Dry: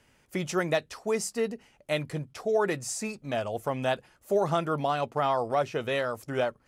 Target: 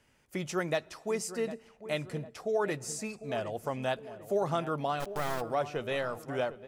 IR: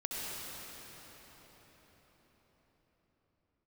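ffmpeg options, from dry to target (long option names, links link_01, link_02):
-filter_complex "[0:a]asplit=3[link_01][link_02][link_03];[link_01]afade=type=out:start_time=4.99:duration=0.02[link_04];[link_02]acrusher=bits=3:dc=4:mix=0:aa=0.000001,afade=type=in:start_time=4.99:duration=0.02,afade=type=out:start_time=5.4:duration=0.02[link_05];[link_03]afade=type=in:start_time=5.4:duration=0.02[link_06];[link_04][link_05][link_06]amix=inputs=3:normalize=0,asplit=2[link_07][link_08];[link_08]adelay=751,lowpass=frequency=1400:poles=1,volume=-12.5dB,asplit=2[link_09][link_10];[link_10]adelay=751,lowpass=frequency=1400:poles=1,volume=0.5,asplit=2[link_11][link_12];[link_12]adelay=751,lowpass=frequency=1400:poles=1,volume=0.5,asplit=2[link_13][link_14];[link_14]adelay=751,lowpass=frequency=1400:poles=1,volume=0.5,asplit=2[link_15][link_16];[link_16]adelay=751,lowpass=frequency=1400:poles=1,volume=0.5[link_17];[link_07][link_09][link_11][link_13][link_15][link_17]amix=inputs=6:normalize=0,asplit=2[link_18][link_19];[1:a]atrim=start_sample=2205,afade=type=out:start_time=0.38:duration=0.01,atrim=end_sample=17199[link_20];[link_19][link_20]afir=irnorm=-1:irlink=0,volume=-27dB[link_21];[link_18][link_21]amix=inputs=2:normalize=0,volume=-4.5dB"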